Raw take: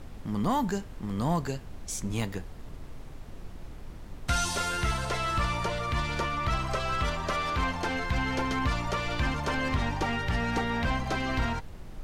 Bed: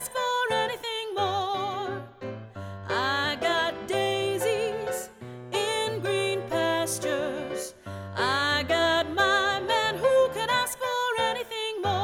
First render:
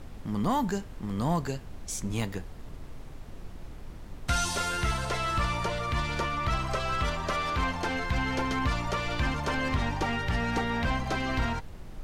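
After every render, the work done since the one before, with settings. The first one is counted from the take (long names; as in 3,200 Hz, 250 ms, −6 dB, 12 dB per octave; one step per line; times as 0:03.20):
no processing that can be heard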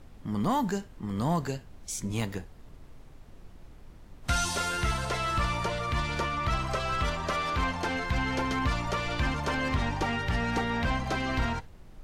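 noise reduction from a noise print 7 dB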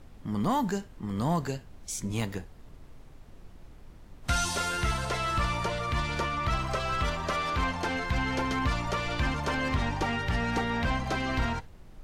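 0:06.47–0:07.27: slack as between gear wheels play −57 dBFS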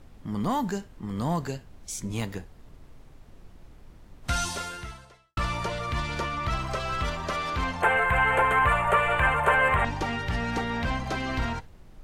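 0:04.43–0:05.37: fade out quadratic
0:07.82–0:09.85: drawn EQ curve 190 Hz 0 dB, 280 Hz −13 dB, 420 Hz +8 dB, 1,600 Hz +12 dB, 2,800 Hz +5 dB, 5,400 Hz −25 dB, 8,100 Hz +7 dB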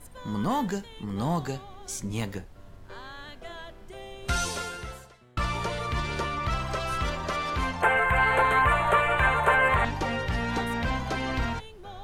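mix in bed −17 dB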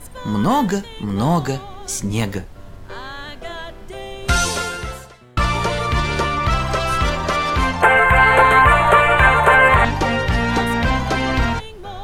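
level +10.5 dB
brickwall limiter −1 dBFS, peak gain reduction 2 dB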